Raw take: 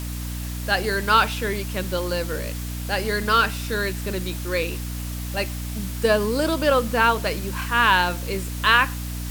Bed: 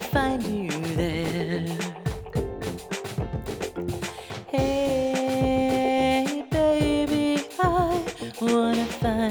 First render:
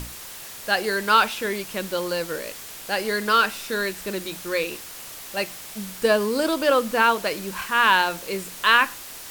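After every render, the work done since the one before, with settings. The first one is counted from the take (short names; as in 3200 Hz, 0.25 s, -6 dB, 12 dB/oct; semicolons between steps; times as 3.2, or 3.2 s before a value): notches 60/120/180/240/300 Hz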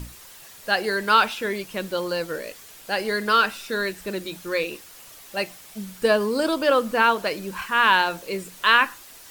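denoiser 8 dB, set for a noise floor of -39 dBFS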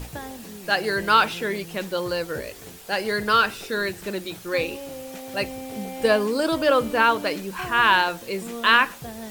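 add bed -13 dB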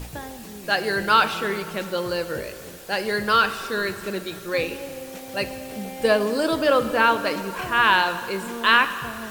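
plate-style reverb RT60 2.5 s, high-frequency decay 0.75×, DRR 10.5 dB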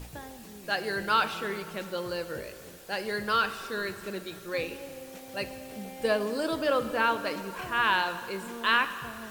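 gain -7.5 dB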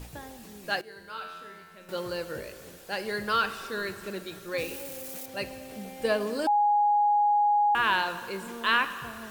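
0.81–1.89 resonator 89 Hz, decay 1.3 s, mix 90%; 4.58–5.26 switching spikes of -34 dBFS; 6.47–7.75 bleep 828 Hz -19.5 dBFS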